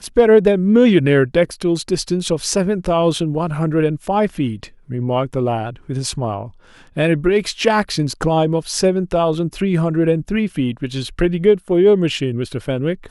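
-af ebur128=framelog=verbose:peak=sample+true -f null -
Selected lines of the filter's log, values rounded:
Integrated loudness:
  I:         -17.5 LUFS
  Threshold: -27.7 LUFS
Loudness range:
  LRA:         4.6 LU
  Threshold: -38.5 LUFS
  LRA low:   -21.0 LUFS
  LRA high:  -16.4 LUFS
Sample peak:
  Peak:       -1.7 dBFS
True peak:
  Peak:       -1.7 dBFS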